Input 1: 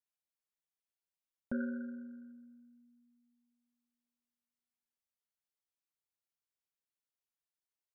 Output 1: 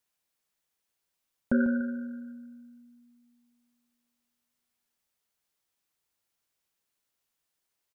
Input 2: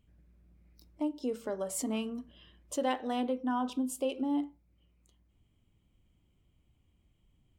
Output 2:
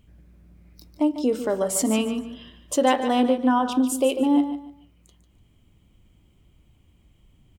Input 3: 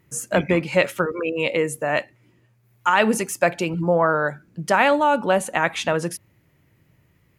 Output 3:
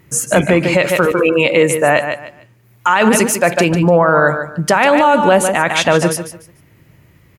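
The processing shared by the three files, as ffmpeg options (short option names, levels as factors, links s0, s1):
-af "aecho=1:1:147|294|441:0.299|0.0746|0.0187,alimiter=level_in=4.22:limit=0.891:release=50:level=0:latency=1,volume=0.891"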